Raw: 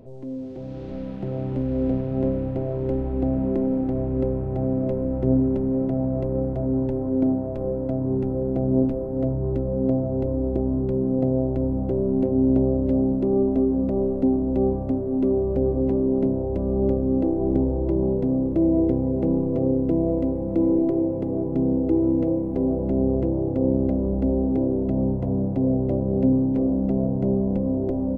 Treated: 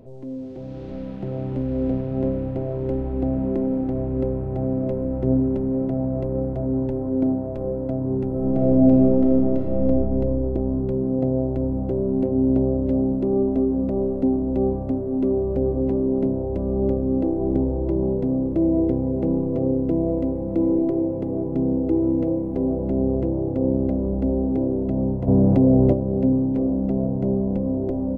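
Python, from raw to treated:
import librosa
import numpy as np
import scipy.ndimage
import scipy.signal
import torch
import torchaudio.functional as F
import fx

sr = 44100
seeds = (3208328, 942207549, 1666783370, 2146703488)

y = fx.reverb_throw(x, sr, start_s=8.27, length_s=1.54, rt60_s=2.8, drr_db=-2.5)
y = fx.env_flatten(y, sr, amount_pct=70, at=(25.27, 25.92), fade=0.02)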